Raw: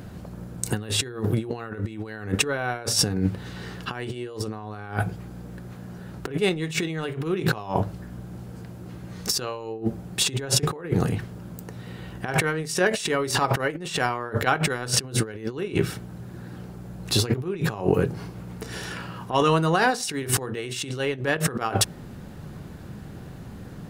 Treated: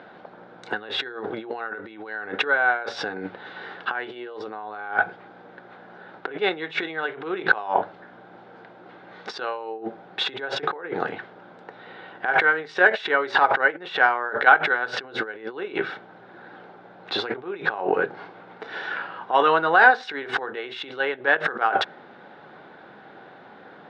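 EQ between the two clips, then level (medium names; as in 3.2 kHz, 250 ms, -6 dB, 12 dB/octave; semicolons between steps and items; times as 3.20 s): dynamic bell 1.6 kHz, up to +4 dB, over -40 dBFS, Q 2.6; cabinet simulation 350–4000 Hz, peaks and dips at 810 Hz +6 dB, 1.5 kHz +9 dB, 2.1 kHz +5 dB, 3.6 kHz +8 dB; peaking EQ 670 Hz +9 dB 2.8 oct; -7.0 dB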